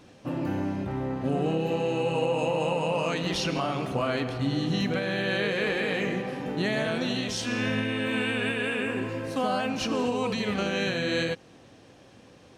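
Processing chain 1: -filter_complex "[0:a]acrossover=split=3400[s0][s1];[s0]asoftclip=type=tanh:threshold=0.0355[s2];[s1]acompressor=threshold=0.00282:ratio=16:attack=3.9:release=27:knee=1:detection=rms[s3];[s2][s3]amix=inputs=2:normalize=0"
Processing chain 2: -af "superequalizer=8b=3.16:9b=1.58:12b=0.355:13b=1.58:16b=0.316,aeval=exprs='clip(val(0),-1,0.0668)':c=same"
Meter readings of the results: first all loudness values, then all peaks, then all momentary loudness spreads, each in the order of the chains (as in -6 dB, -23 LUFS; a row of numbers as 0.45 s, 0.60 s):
-33.0 LUFS, -26.5 LUFS; -27.0 dBFS, -11.5 dBFS; 3 LU, 5 LU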